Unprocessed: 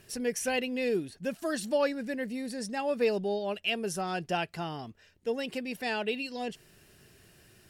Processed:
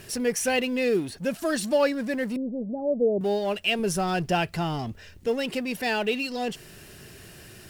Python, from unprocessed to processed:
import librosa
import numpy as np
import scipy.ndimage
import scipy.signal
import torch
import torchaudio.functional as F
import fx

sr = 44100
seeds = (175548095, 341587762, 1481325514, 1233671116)

y = fx.law_mismatch(x, sr, coded='mu')
y = fx.ellip_lowpass(y, sr, hz=680.0, order=4, stop_db=70, at=(2.36, 3.21))
y = fx.low_shelf(y, sr, hz=120.0, db=11.0, at=(3.79, 5.28))
y = F.gain(torch.from_numpy(y), 4.5).numpy()